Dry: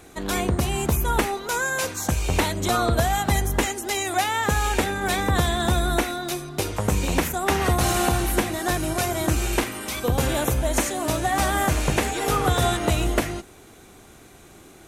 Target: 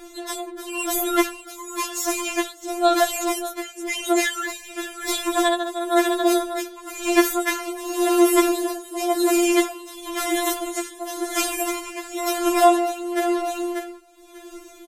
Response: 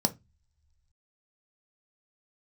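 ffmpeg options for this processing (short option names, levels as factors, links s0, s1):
-filter_complex "[0:a]asettb=1/sr,asplit=3[s0][s1][s2];[s0]atrim=end=3.644[s3];[s1]atrim=start=3.64:end=4.22,asetpts=PTS-STARTPTS,afade=t=in:d=0.004:c=qsin,afade=t=out:st=0.576:d=0.004:c=qsin,highshelf=f=11000:g=-11[s4];[s2]atrim=start=4.216[s5];[s3][s4]acrossfade=d=0.004:c1=hsin:c2=qsin[s6];[s6][s5]acrossfade=d=0.004:c1=qsin:c2=hsin,asplit=2[s7][s8];[s8]aecho=0:1:591|1182:0.316|0.0506[s9];[s7][s9]amix=inputs=2:normalize=0,tremolo=f=0.96:d=0.82,afftfilt=real='re*4*eq(mod(b,16),0)':imag='im*4*eq(mod(b,16),0)':win_size=2048:overlap=0.75,volume=2.11"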